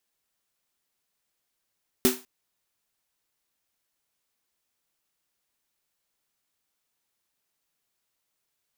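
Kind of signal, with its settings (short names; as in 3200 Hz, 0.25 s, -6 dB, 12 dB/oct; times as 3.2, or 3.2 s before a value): snare drum length 0.20 s, tones 250 Hz, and 380 Hz, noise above 570 Hz, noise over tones -3 dB, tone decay 0.24 s, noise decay 0.31 s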